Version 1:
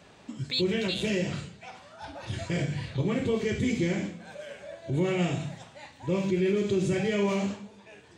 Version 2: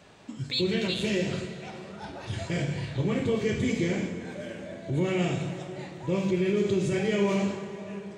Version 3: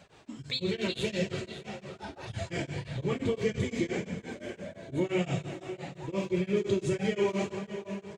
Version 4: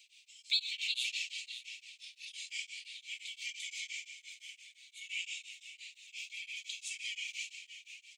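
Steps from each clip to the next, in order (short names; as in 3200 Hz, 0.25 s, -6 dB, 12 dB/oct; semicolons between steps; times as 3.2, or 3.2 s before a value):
plate-style reverb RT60 4.5 s, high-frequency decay 0.55×, DRR 7 dB
flange 1.7 Hz, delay 1.2 ms, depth 2.1 ms, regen -42%; echo 0.579 s -14 dB; beating tremolo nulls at 5.8 Hz; gain +3.5 dB
steep high-pass 2300 Hz 72 dB/oct; gain +3 dB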